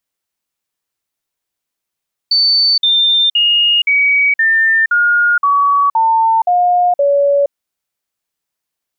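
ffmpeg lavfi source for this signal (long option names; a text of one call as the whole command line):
ffmpeg -f lavfi -i "aevalsrc='0.376*clip(min(mod(t,0.52),0.47-mod(t,0.52))/0.005,0,1)*sin(2*PI*4530*pow(2,-floor(t/0.52)/3)*mod(t,0.52))':duration=5.2:sample_rate=44100" out.wav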